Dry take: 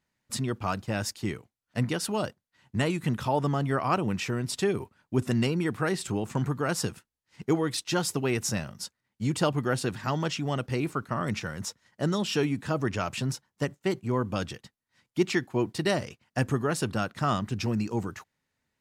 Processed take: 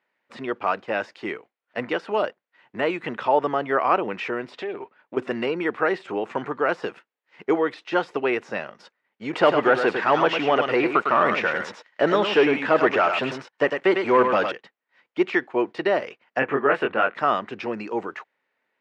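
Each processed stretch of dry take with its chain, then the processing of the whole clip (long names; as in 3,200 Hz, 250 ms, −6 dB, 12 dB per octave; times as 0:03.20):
0:04.53–0:05.17: low-pass filter 6,000 Hz + downward compressor 5 to 1, threshold −32 dBFS + highs frequency-modulated by the lows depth 0.17 ms
0:09.33–0:14.52: tilt shelving filter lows −5.5 dB, about 1,300 Hz + leveller curve on the samples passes 3 + single-tap delay 103 ms −7.5 dB
0:16.39–0:17.15: high shelf with overshoot 3,600 Hz −13 dB, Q 1.5 + double-tracking delay 22 ms −3 dB
whole clip: de-essing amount 90%; Chebyshev band-pass filter 440–2,400 Hz, order 2; level +8.5 dB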